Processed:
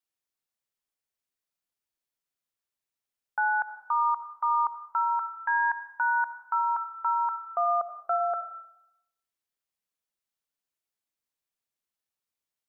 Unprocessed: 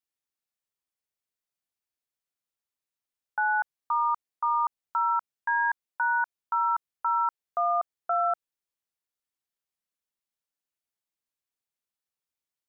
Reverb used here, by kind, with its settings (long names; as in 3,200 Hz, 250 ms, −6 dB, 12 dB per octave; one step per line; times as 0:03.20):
comb and all-pass reverb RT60 0.83 s, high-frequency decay 0.8×, pre-delay 30 ms, DRR 10.5 dB